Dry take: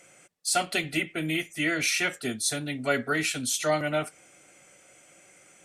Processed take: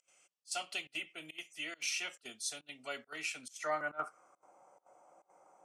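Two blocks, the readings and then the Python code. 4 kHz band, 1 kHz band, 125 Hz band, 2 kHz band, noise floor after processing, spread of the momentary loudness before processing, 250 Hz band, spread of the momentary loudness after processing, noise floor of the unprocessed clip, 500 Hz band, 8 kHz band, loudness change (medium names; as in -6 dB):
-10.5 dB, -10.0 dB, -28.0 dB, -12.5 dB, -84 dBFS, 5 LU, -23.0 dB, 9 LU, -57 dBFS, -14.5 dB, -12.5 dB, -12.5 dB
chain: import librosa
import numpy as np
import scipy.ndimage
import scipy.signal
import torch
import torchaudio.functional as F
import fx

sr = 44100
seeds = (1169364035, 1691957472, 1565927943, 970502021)

y = fx.filter_sweep_bandpass(x, sr, from_hz=2900.0, to_hz=900.0, start_s=3.13, end_s=4.53, q=3.8)
y = fx.volume_shaper(y, sr, bpm=138, per_beat=1, depth_db=-23, release_ms=77.0, shape='slow start')
y = fx.band_shelf(y, sr, hz=2500.0, db=-15.0, octaves=1.7)
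y = F.gain(torch.from_numpy(y), 8.5).numpy()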